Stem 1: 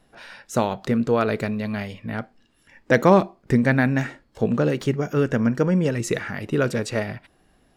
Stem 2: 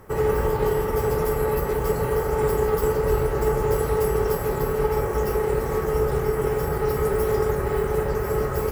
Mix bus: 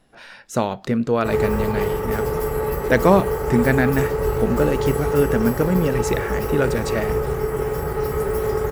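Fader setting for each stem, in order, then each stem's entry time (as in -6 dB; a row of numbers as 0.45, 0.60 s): +0.5, 0.0 dB; 0.00, 1.15 s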